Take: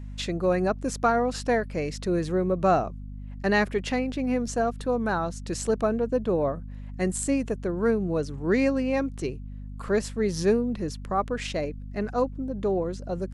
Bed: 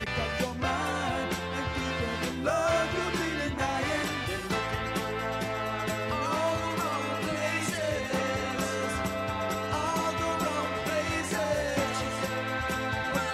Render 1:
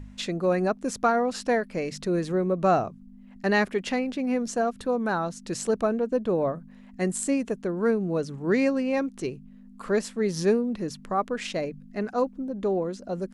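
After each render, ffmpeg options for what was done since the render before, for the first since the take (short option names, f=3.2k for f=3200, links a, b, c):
-af "bandreject=f=50:t=h:w=4,bandreject=f=100:t=h:w=4,bandreject=f=150:t=h:w=4"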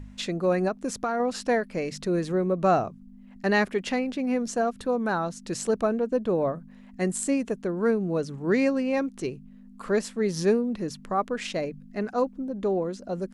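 -filter_complex "[0:a]asettb=1/sr,asplit=3[a][b][c];[a]atrim=end=0.684[d];[b]atrim=start=0.68:end=1.2,asetpts=PTS-STARTPTS,afade=t=in:d=0.004:c=qsin,afade=t=out:st=0.516:d=0.004:c=qsin,acompressor=threshold=-23dB:ratio=6:attack=3.2:release=140:knee=1:detection=peak[e];[c]atrim=start=1.196[f];[d][e]acrossfade=d=0.004:c1=hsin:c2=qsin[g];[g][f]acrossfade=d=0.004:c1=qsin:c2=hsin"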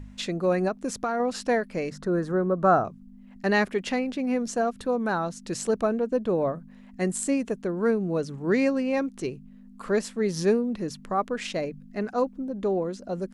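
-filter_complex "[0:a]asettb=1/sr,asplit=3[a][b][c];[a]atrim=end=1.904[d];[b]atrim=start=1.9:end=2.85,asetpts=PTS-STARTPTS,afade=t=in:d=0.004:c=qsin,afade=t=out:st=0.946:d=0.004:c=qsin,highshelf=f=1.9k:t=q:w=3:g=-7.5[e];[c]atrim=start=2.846[f];[d][e]acrossfade=d=0.004:c1=hsin:c2=qsin[g];[g][f]acrossfade=d=0.004:c1=qsin:c2=hsin"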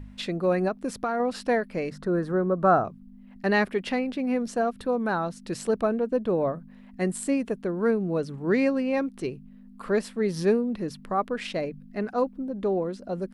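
-af "equalizer=f=6.7k:t=o:w=0.59:g=-9"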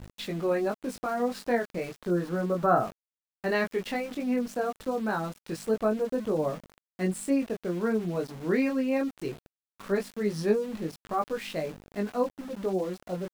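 -af "flanger=delay=18.5:depth=4.7:speed=0.18,aeval=exprs='val(0)*gte(abs(val(0)),0.00841)':c=same"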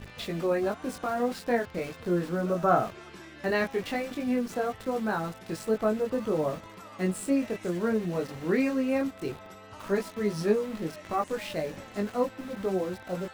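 -filter_complex "[1:a]volume=-16.5dB[a];[0:a][a]amix=inputs=2:normalize=0"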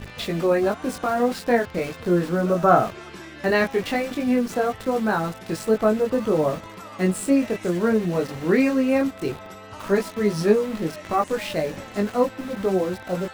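-af "volume=7dB"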